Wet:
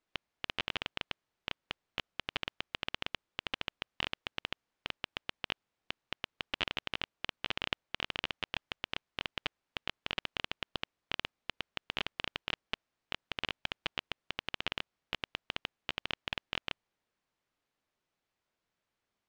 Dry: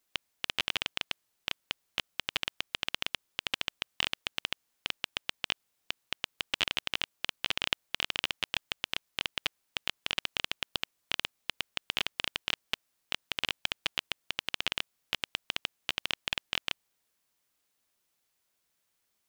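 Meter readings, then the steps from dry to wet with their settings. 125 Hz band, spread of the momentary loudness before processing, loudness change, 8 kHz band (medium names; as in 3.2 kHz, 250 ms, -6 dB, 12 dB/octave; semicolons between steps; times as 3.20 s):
+0.5 dB, 7 LU, -5.0 dB, -13.5 dB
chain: tape spacing loss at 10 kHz 22 dB; trim +1 dB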